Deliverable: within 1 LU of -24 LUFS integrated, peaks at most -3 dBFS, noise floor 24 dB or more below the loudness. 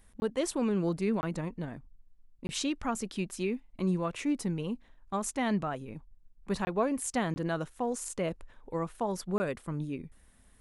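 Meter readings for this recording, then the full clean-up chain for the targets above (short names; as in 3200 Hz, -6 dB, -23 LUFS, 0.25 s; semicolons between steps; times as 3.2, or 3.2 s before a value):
dropouts 6; longest dropout 20 ms; loudness -33.5 LUFS; peak -16.5 dBFS; loudness target -24.0 LUFS
-> interpolate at 0.2/1.21/2.47/6.65/7.34/9.38, 20 ms; gain +9.5 dB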